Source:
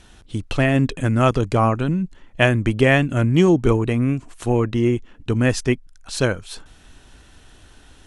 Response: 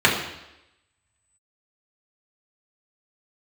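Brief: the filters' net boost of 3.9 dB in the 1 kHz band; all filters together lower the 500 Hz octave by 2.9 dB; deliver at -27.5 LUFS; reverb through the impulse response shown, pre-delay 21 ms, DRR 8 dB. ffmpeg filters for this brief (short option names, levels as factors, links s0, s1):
-filter_complex "[0:a]equalizer=f=500:t=o:g=-6,equalizer=f=1000:t=o:g=7,asplit=2[s0][s1];[1:a]atrim=start_sample=2205,adelay=21[s2];[s1][s2]afir=irnorm=-1:irlink=0,volume=0.0316[s3];[s0][s3]amix=inputs=2:normalize=0,volume=0.398"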